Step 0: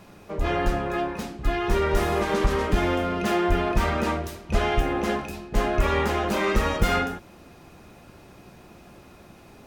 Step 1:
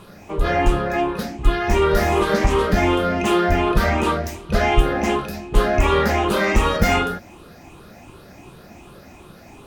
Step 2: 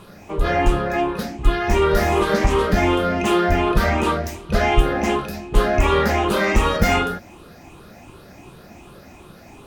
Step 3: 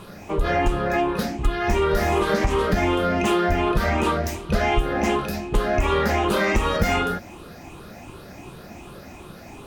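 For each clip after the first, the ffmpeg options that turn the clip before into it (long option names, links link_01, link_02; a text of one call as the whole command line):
ffmpeg -i in.wav -af "afftfilt=real='re*pow(10,9/40*sin(2*PI*(0.65*log(max(b,1)*sr/1024/100)/log(2)-(2.7)*(pts-256)/sr)))':imag='im*pow(10,9/40*sin(2*PI*(0.65*log(max(b,1)*sr/1024/100)/log(2)-(2.7)*(pts-256)/sr)))':win_size=1024:overlap=0.75,volume=4.5dB" out.wav
ffmpeg -i in.wav -af anull out.wav
ffmpeg -i in.wav -af "acompressor=threshold=-21dB:ratio=3,volume=2.5dB" out.wav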